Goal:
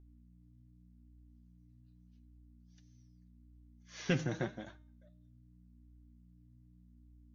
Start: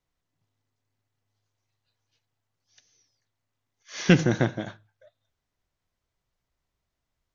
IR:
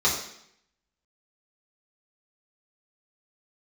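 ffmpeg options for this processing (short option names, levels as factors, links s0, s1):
-af "aeval=exprs='val(0)+0.00562*(sin(2*PI*60*n/s)+sin(2*PI*2*60*n/s)/2+sin(2*PI*3*60*n/s)/3+sin(2*PI*4*60*n/s)/4+sin(2*PI*5*60*n/s)/5)':c=same,flanger=delay=2.5:depth=5.4:regen=34:speed=0.84:shape=triangular,bandreject=f=305.1:t=h:w=4,bandreject=f=610.2:t=h:w=4,bandreject=f=915.3:t=h:w=4,bandreject=f=1220.4:t=h:w=4,bandreject=f=1525.5:t=h:w=4,bandreject=f=1830.6:t=h:w=4,bandreject=f=2135.7:t=h:w=4,bandreject=f=2440.8:t=h:w=4,bandreject=f=2745.9:t=h:w=4,bandreject=f=3051:t=h:w=4,bandreject=f=3356.1:t=h:w=4,bandreject=f=3661.2:t=h:w=4,bandreject=f=3966.3:t=h:w=4,bandreject=f=4271.4:t=h:w=4,bandreject=f=4576.5:t=h:w=4,bandreject=f=4881.6:t=h:w=4,bandreject=f=5186.7:t=h:w=4,bandreject=f=5491.8:t=h:w=4,bandreject=f=5796.9:t=h:w=4,bandreject=f=6102:t=h:w=4,bandreject=f=6407.1:t=h:w=4,bandreject=f=6712.2:t=h:w=4,bandreject=f=7017.3:t=h:w=4,bandreject=f=7322.4:t=h:w=4,bandreject=f=7627.5:t=h:w=4,bandreject=f=7932.6:t=h:w=4,bandreject=f=8237.7:t=h:w=4,bandreject=f=8542.8:t=h:w=4,bandreject=f=8847.9:t=h:w=4,bandreject=f=9153:t=h:w=4,bandreject=f=9458.1:t=h:w=4,bandreject=f=9763.2:t=h:w=4,bandreject=f=10068.3:t=h:w=4,bandreject=f=10373.4:t=h:w=4,bandreject=f=10678.5:t=h:w=4,bandreject=f=10983.6:t=h:w=4,volume=0.355"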